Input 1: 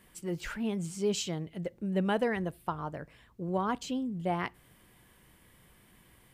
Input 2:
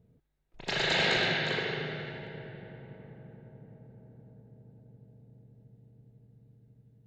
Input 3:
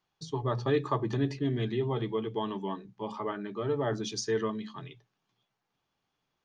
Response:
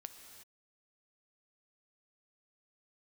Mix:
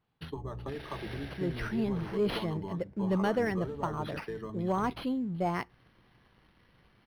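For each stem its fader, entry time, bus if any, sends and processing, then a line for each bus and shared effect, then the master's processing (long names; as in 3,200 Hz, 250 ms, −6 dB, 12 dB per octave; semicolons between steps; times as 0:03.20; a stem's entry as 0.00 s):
−2.0 dB, 1.15 s, no send, leveller curve on the samples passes 1
−17.5 dB, 0.00 s, no send, no processing
+0.5 dB, 0.00 s, no send, sub-octave generator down 1 octave, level −3 dB; downward compressor 10 to 1, threshold −36 dBFS, peak gain reduction 15.5 dB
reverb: not used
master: linearly interpolated sample-rate reduction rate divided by 6×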